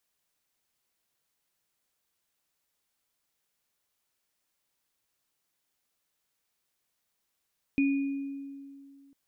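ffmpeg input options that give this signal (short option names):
-f lavfi -i "aevalsrc='0.0891*pow(10,-3*t/2.34)*sin(2*PI*277*t)+0.0282*pow(10,-3*t/1)*sin(2*PI*2460*t)':d=1.35:s=44100"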